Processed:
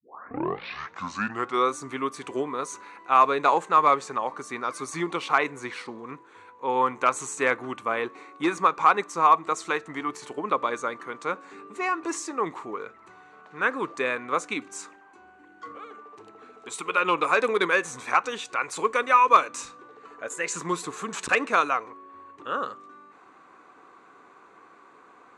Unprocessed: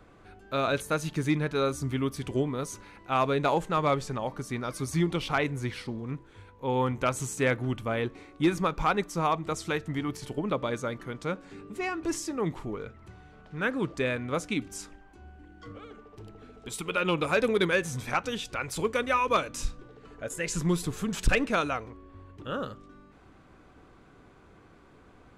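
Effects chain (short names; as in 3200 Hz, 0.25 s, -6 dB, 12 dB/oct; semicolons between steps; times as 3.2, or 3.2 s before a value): tape start at the beginning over 1.76 s; speaker cabinet 430–8600 Hz, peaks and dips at 600 Hz -5 dB, 1100 Hz +8 dB, 3200 Hz -7 dB, 5100 Hz -8 dB; gain +5 dB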